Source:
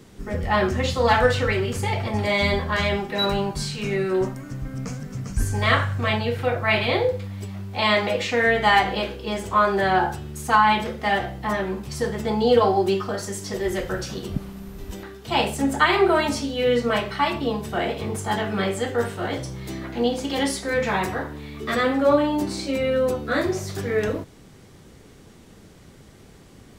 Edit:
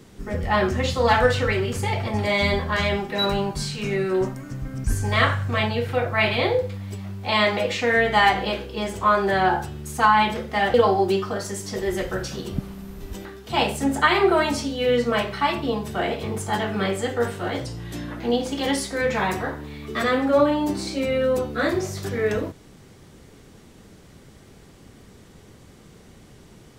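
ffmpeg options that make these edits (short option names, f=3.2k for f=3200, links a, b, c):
-filter_complex "[0:a]asplit=5[a][b][c][d][e];[a]atrim=end=4.842[f];[b]atrim=start=5.338:end=11.242[g];[c]atrim=start=12.518:end=19.444[h];[d]atrim=start=19.44:end=19.91,asetpts=PTS-STARTPTS,asetrate=39249,aresample=44100[i];[e]atrim=start=19.906[j];[f][g]acrossfade=d=0.004:c1=hsin:c2=hsin[k];[k][h]acrossfade=d=0.004:c1=hsin:c2=hsin[l];[l][i]acrossfade=d=0.004:c1=hsin:c2=hsin[m];[m][j]acrossfade=d=0.004:c1=hsin:c2=hsin"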